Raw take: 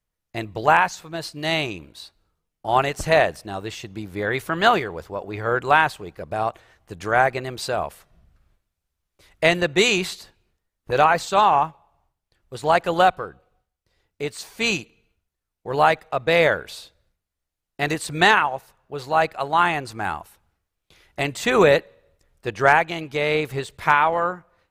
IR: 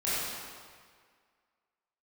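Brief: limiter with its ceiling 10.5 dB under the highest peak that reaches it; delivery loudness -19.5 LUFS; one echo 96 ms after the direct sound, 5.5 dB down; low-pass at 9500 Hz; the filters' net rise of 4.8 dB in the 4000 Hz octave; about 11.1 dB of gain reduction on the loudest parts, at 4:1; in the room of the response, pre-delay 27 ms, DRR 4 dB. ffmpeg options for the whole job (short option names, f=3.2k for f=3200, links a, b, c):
-filter_complex "[0:a]lowpass=9.5k,equalizer=f=4k:t=o:g=6,acompressor=threshold=-24dB:ratio=4,alimiter=limit=-19.5dB:level=0:latency=1,aecho=1:1:96:0.531,asplit=2[a][b];[1:a]atrim=start_sample=2205,adelay=27[c];[b][c]afir=irnorm=-1:irlink=0,volume=-13.5dB[d];[a][d]amix=inputs=2:normalize=0,volume=10dB"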